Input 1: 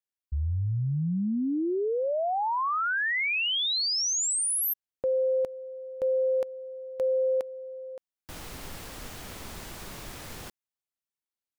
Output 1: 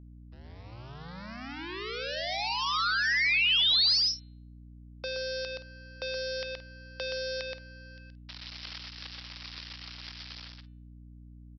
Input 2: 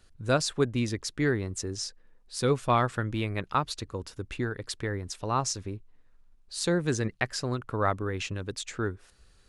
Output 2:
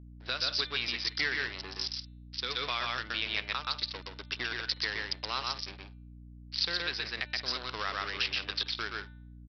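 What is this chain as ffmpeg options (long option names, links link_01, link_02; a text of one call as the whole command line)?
ffmpeg -i in.wav -filter_complex "[0:a]aresample=11025,aeval=exprs='sgn(val(0))*max(abs(val(0))-0.0119,0)':channel_layout=same,aresample=44100,aemphasis=mode=production:type=riaa,bandreject=frequency=297.5:width_type=h:width=4,bandreject=frequency=595:width_type=h:width=4,bandreject=frequency=892.5:width_type=h:width=4,bandreject=frequency=1190:width_type=h:width=4,bandreject=frequency=1487.5:width_type=h:width=4,bandreject=frequency=1785:width_type=h:width=4,bandreject=frequency=2082.5:width_type=h:width=4,bandreject=frequency=2380:width_type=h:width=4,bandreject=frequency=2677.5:width_type=h:width=4,bandreject=frequency=2975:width_type=h:width=4,bandreject=frequency=3272.5:width_type=h:width=4,bandreject=frequency=3570:width_type=h:width=4,bandreject=frequency=3867.5:width_type=h:width=4,bandreject=frequency=4165:width_type=h:width=4,asplit=2[link_01][link_02];[link_02]aecho=0:1:123|173:0.668|0.133[link_03];[link_01][link_03]amix=inputs=2:normalize=0,acrossover=split=640|1300[link_04][link_05][link_06];[link_04]acompressor=threshold=-35dB:ratio=4[link_07];[link_05]acompressor=threshold=-47dB:ratio=4[link_08];[link_06]acompressor=threshold=-31dB:ratio=4[link_09];[link_07][link_08][link_09]amix=inputs=3:normalize=0,alimiter=limit=-24dB:level=0:latency=1:release=220,tiltshelf=frequency=860:gain=-8.5,aeval=exprs='val(0)+0.00398*(sin(2*PI*60*n/s)+sin(2*PI*2*60*n/s)/2+sin(2*PI*3*60*n/s)/3+sin(2*PI*4*60*n/s)/4+sin(2*PI*5*60*n/s)/5)':channel_layout=same" out.wav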